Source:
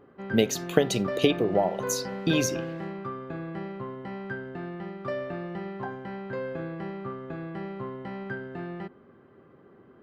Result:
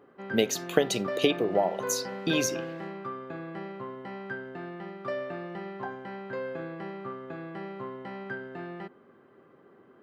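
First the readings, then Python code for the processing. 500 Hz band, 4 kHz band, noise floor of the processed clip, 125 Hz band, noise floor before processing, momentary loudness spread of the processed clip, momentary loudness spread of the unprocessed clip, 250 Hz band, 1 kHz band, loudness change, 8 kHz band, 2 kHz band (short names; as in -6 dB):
-1.5 dB, 0.0 dB, -58 dBFS, -6.5 dB, -56 dBFS, 14 LU, 13 LU, -3.5 dB, -0.5 dB, -1.5 dB, 0.0 dB, 0.0 dB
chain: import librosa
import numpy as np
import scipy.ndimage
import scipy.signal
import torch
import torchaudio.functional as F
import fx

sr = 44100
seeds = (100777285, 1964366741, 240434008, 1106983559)

y = fx.highpass(x, sr, hz=290.0, slope=6)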